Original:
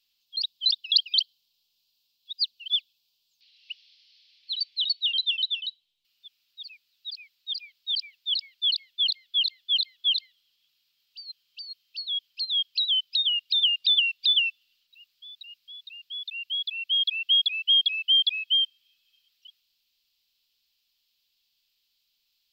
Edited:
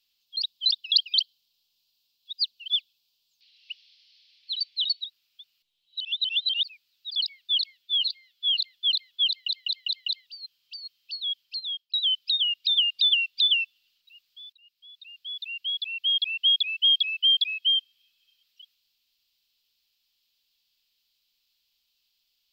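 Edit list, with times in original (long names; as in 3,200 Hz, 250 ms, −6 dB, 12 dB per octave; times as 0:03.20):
0:05.04–0:06.63: reverse
0:07.16–0:08.29: remove
0:08.90–0:09.45: time-stretch 1.5×
0:10.12: stutter in place 0.20 s, 5 plays
0:12.07–0:12.79: fade out equal-power
0:15.38–0:16.18: fade in, from −18.5 dB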